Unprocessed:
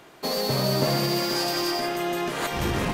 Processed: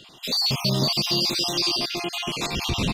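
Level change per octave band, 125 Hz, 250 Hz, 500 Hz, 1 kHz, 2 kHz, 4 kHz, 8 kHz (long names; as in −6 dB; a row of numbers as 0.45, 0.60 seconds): +0.5, −1.5, −5.5, −4.0, −1.0, +6.5, +2.5 decibels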